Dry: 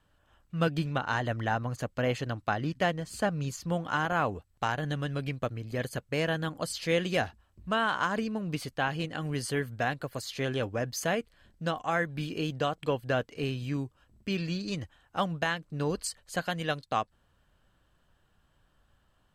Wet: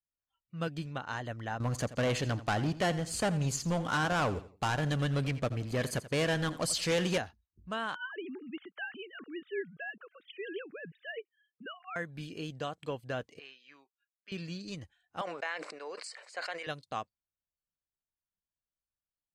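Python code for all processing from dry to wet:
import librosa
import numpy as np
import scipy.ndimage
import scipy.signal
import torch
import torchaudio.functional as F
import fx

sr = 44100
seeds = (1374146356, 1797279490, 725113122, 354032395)

y = fx.chain(x, sr, fx.leveller(passes=3),
    fx.echo_feedback(ms=85, feedback_pct=31, wet_db=-15.5), at=(1.6, 7.18))
y = fx.chain(y, sr, fx.sine_speech(),
    fx.band_shelf(hz=740.0, db=-12.5, octaves=1.2), at=(7.95, 11.96))
y = fx.chain(y, sr, fx.highpass(hz=1100.0, slope=12),
    fx.air_absorb(metres=190.0), at=(13.39, 14.32))
y = fx.chain(y, sr, fx.cabinet(low_hz=450.0, low_slope=24, high_hz=7200.0, hz=(2200.0, 3300.0, 6300.0), db=(8, -10, -9)),
    fx.sustainer(db_per_s=44.0), at=(15.21, 16.67))
y = fx.noise_reduce_blind(y, sr, reduce_db=27)
y = fx.dynamic_eq(y, sr, hz=7700.0, q=0.78, threshold_db=-54.0, ratio=4.0, max_db=4)
y = scipy.signal.sosfilt(scipy.signal.butter(2, 12000.0, 'lowpass', fs=sr, output='sos'), y)
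y = y * 10.0 ** (-8.0 / 20.0)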